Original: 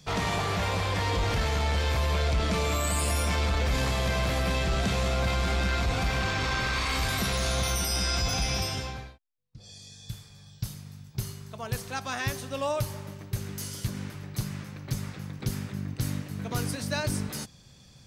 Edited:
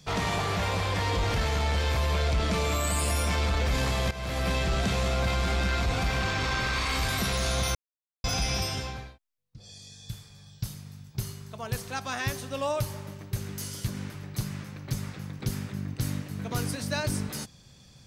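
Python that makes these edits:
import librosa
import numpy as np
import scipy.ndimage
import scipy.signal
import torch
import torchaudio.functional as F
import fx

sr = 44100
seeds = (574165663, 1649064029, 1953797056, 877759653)

y = fx.edit(x, sr, fx.fade_in_from(start_s=4.11, length_s=0.37, floor_db=-14.5),
    fx.silence(start_s=7.75, length_s=0.49), tone=tone)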